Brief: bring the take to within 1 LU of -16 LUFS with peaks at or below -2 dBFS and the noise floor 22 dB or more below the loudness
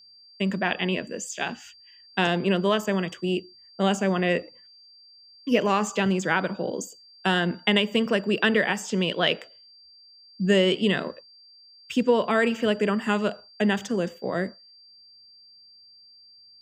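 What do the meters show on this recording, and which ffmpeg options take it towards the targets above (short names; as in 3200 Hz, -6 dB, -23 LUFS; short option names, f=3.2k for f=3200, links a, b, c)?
steady tone 4700 Hz; tone level -50 dBFS; loudness -25.0 LUFS; peak -6.0 dBFS; loudness target -16.0 LUFS
-> -af "bandreject=f=4.7k:w=30"
-af "volume=9dB,alimiter=limit=-2dB:level=0:latency=1"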